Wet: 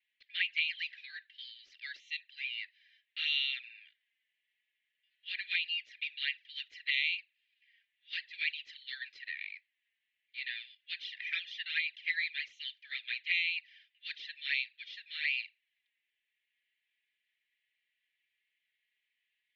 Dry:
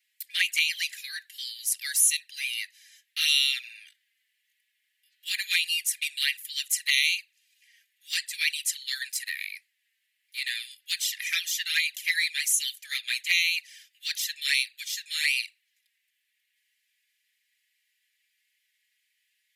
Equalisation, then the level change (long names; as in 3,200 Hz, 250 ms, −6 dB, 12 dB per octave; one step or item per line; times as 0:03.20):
inverse Chebyshev low-pass filter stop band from 8,500 Hz, stop band 50 dB
high-frequency loss of the air 170 metres
phaser with its sweep stopped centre 370 Hz, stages 4
−2.5 dB